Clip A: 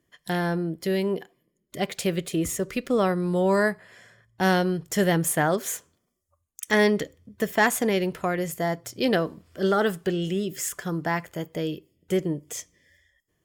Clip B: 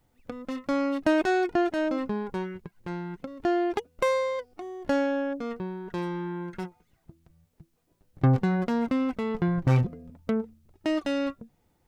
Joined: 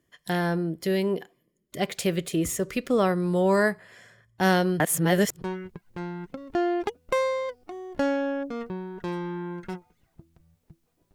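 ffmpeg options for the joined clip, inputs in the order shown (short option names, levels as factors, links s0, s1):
-filter_complex "[0:a]apad=whole_dur=11.14,atrim=end=11.14,asplit=2[s0][s1];[s0]atrim=end=4.802[s2];[s1]atrim=start=4.798:end=5.422,asetpts=PTS-STARTPTS,areverse[s3];[1:a]atrim=start=2.318:end=8.04[s4];[s2][s3]acrossfade=d=0.004:c1=hsin:c2=hsin[s5];[s5][s4]acrossfade=d=0.004:c1=hsin:c2=hsin"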